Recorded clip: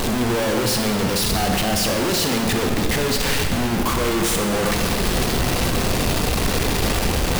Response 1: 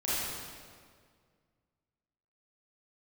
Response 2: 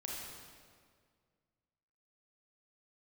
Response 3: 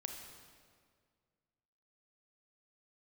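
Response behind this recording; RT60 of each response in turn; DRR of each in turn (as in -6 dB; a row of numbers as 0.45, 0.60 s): 3; 1.9, 1.9, 1.9 s; -10.5, -3.5, 3.5 dB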